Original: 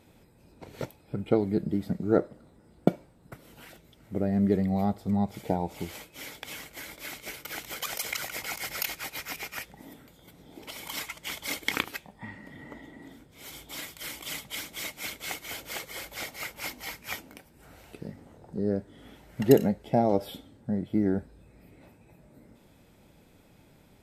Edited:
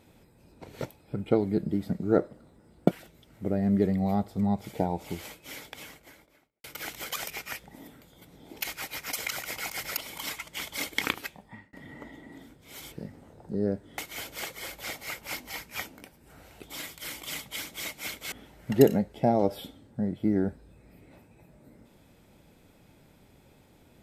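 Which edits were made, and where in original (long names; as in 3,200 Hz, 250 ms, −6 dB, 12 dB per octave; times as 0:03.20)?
0:02.91–0:03.61: remove
0:06.18–0:07.34: fade out and dull
0:07.98–0:08.83: swap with 0:09.34–0:10.67
0:12.10–0:12.43: fade out
0:13.62–0:15.31: swap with 0:17.96–0:19.02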